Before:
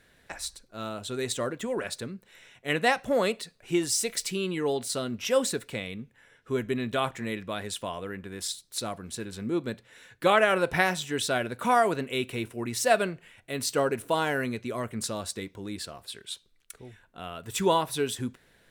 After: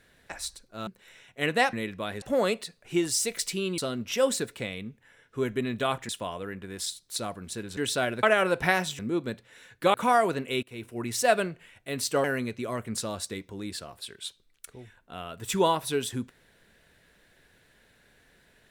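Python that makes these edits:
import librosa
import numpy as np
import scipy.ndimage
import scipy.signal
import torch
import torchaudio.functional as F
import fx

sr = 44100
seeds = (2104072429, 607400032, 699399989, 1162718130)

y = fx.edit(x, sr, fx.cut(start_s=0.87, length_s=1.27),
    fx.cut(start_s=4.56, length_s=0.35),
    fx.move(start_s=7.22, length_s=0.49, to_s=3.0),
    fx.swap(start_s=9.39, length_s=0.95, other_s=11.1, other_length_s=0.46),
    fx.fade_in_from(start_s=12.25, length_s=0.39, floor_db=-21.5),
    fx.cut(start_s=13.86, length_s=0.44), tone=tone)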